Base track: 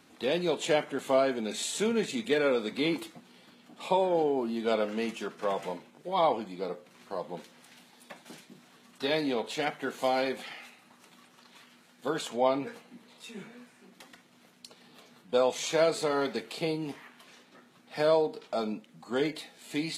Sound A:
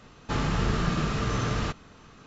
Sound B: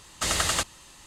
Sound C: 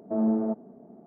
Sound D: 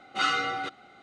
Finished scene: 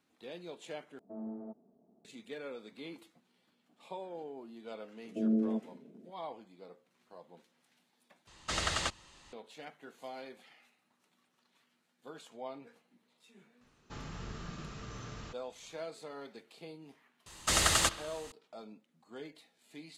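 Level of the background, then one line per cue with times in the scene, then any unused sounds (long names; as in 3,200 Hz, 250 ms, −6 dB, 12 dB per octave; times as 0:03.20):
base track −17.5 dB
0:00.99: overwrite with C −18 dB
0:05.05: mix in C −4.5 dB + elliptic band-pass filter 120–530 Hz
0:08.27: overwrite with B −6.5 dB + low-pass filter 5,700 Hz
0:13.61: mix in A −18 dB + high-shelf EQ 5,700 Hz +8 dB
0:17.26: mix in B −2 dB + bucket-brigade delay 66 ms, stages 2,048, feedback 70%, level −18 dB
not used: D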